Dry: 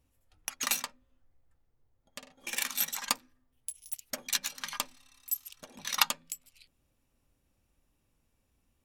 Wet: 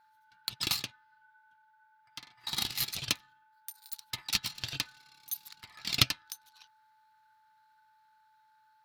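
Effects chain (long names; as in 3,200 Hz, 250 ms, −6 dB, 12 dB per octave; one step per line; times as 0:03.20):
ring modulation 1,500 Hz
octave-band graphic EQ 125/500/4,000/8,000 Hz +11/−10/+10/−6 dB
steady tone 870 Hz −64 dBFS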